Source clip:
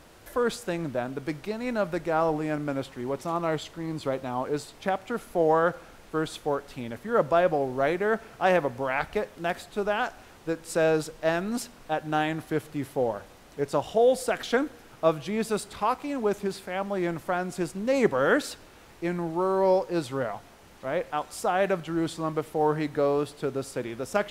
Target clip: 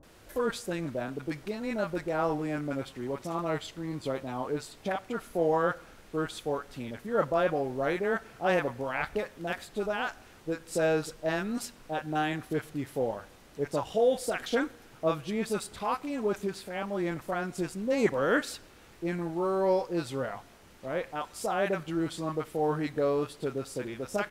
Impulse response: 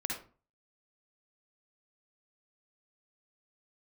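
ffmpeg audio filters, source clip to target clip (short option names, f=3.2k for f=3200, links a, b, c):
-filter_complex "[0:a]acrossover=split=800[a][b];[b]adelay=30[c];[a][c]amix=inputs=2:normalize=0,volume=-2.5dB"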